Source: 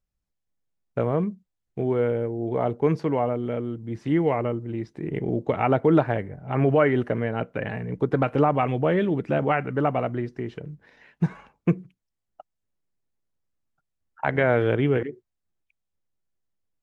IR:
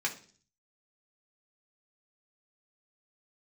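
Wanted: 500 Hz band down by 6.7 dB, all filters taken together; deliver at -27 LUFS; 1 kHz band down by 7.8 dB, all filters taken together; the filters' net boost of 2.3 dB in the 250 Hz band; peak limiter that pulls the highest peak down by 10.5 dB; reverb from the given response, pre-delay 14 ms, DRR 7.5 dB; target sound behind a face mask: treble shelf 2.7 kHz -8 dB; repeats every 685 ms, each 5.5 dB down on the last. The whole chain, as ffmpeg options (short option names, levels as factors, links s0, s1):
-filter_complex "[0:a]equalizer=f=250:t=o:g=6.5,equalizer=f=500:t=o:g=-9,equalizer=f=1000:t=o:g=-6.5,alimiter=limit=0.119:level=0:latency=1,aecho=1:1:685|1370|2055|2740|3425|4110|4795:0.531|0.281|0.149|0.079|0.0419|0.0222|0.0118,asplit=2[s0][s1];[1:a]atrim=start_sample=2205,adelay=14[s2];[s1][s2]afir=irnorm=-1:irlink=0,volume=0.211[s3];[s0][s3]amix=inputs=2:normalize=0,highshelf=f=2700:g=-8,volume=1.12"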